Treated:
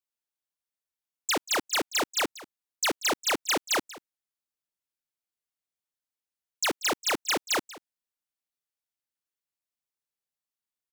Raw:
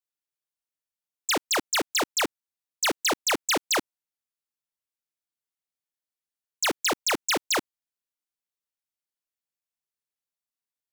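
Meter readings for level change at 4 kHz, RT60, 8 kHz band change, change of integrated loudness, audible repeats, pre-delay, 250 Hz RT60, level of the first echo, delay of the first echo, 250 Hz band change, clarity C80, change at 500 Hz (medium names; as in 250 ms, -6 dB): -2.0 dB, no reverb, -2.0 dB, -2.0 dB, 1, no reverb, no reverb, -18.5 dB, 186 ms, -2.0 dB, no reverb, -2.0 dB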